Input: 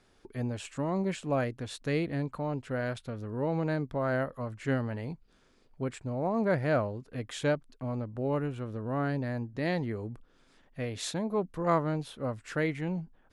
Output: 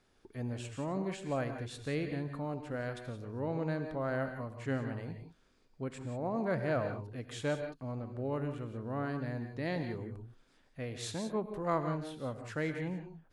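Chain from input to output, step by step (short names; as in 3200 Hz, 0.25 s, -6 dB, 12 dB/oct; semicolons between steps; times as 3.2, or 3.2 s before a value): non-linear reverb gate 0.2 s rising, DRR 7 dB; gain -5.5 dB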